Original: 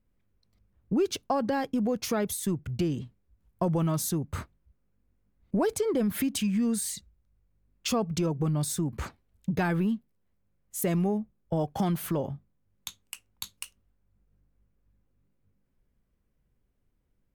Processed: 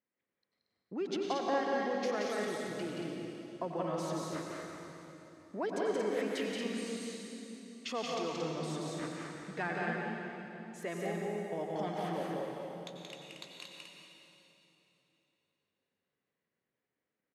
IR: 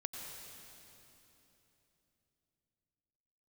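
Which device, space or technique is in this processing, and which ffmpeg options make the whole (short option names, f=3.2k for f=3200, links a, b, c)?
station announcement: -filter_complex "[0:a]highpass=360,lowpass=4.5k,equalizer=f=1.9k:t=o:w=0.33:g=7,aecho=1:1:177.8|230.3:0.708|0.562[a];[1:a]atrim=start_sample=2205[b];[a][b]afir=irnorm=-1:irlink=0,volume=-4.5dB"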